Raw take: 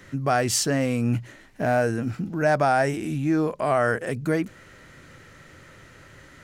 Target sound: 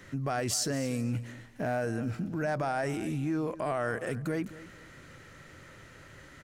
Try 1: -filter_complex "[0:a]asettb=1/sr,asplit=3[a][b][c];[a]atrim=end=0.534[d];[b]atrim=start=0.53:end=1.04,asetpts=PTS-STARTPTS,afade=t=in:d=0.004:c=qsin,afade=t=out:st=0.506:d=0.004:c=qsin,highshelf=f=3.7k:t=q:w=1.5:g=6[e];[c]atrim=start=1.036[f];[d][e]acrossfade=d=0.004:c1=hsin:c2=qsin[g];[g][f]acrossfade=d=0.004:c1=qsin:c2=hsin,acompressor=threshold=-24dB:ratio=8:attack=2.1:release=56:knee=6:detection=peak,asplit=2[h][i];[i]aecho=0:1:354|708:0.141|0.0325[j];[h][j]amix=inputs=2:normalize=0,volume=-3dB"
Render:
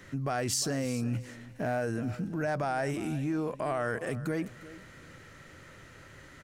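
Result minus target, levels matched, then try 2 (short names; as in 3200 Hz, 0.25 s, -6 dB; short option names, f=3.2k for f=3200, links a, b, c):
echo 0.119 s late
-filter_complex "[0:a]asettb=1/sr,asplit=3[a][b][c];[a]atrim=end=0.534[d];[b]atrim=start=0.53:end=1.04,asetpts=PTS-STARTPTS,afade=t=in:d=0.004:c=qsin,afade=t=out:st=0.506:d=0.004:c=qsin,highshelf=f=3.7k:t=q:w=1.5:g=6[e];[c]atrim=start=1.036[f];[d][e]acrossfade=d=0.004:c1=hsin:c2=qsin[g];[g][f]acrossfade=d=0.004:c1=qsin:c2=hsin,acompressor=threshold=-24dB:ratio=8:attack=2.1:release=56:knee=6:detection=peak,asplit=2[h][i];[i]aecho=0:1:235|470:0.141|0.0325[j];[h][j]amix=inputs=2:normalize=0,volume=-3dB"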